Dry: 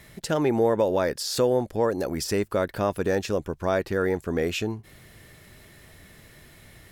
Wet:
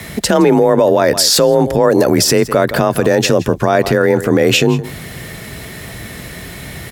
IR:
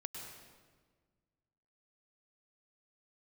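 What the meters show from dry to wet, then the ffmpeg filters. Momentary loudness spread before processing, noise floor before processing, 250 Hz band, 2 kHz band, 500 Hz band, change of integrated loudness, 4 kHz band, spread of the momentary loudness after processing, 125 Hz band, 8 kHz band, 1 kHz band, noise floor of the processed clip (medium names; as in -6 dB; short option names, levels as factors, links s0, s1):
7 LU, -52 dBFS, +13.5 dB, +14.0 dB, +12.5 dB, +13.5 dB, +18.0 dB, 19 LU, +14.0 dB, +18.5 dB, +13.0 dB, -31 dBFS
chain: -filter_complex "[0:a]afreqshift=31,asplit=2[s0][s1];[s1]aecho=0:1:165:0.1[s2];[s0][s2]amix=inputs=2:normalize=0,alimiter=level_in=11.9:limit=0.891:release=50:level=0:latency=1,volume=0.891"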